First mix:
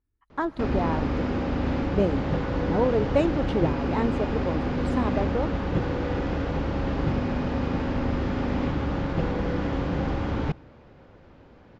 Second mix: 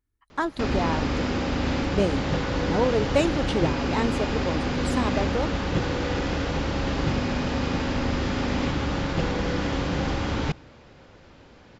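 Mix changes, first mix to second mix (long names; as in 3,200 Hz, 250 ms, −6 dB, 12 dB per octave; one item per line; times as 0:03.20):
speech: send −7.0 dB
master: remove low-pass filter 1,200 Hz 6 dB per octave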